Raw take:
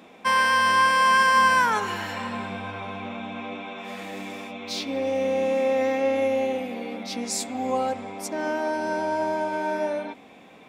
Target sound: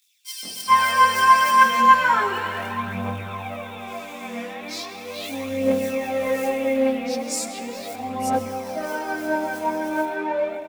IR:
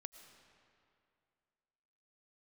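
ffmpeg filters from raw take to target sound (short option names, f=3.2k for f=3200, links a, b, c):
-filter_complex "[0:a]aphaser=in_gain=1:out_gain=1:delay=4.3:decay=0.67:speed=0.38:type=triangular,acrusher=bits=5:mode=log:mix=0:aa=0.000001,acrossover=split=3800[a][b];[a]adelay=430[c];[c][b]amix=inputs=2:normalize=0,asplit=2[d][e];[1:a]atrim=start_sample=2205,adelay=22[f];[e][f]afir=irnorm=-1:irlink=0,volume=9.5dB[g];[d][g]amix=inputs=2:normalize=0,volume=-5.5dB"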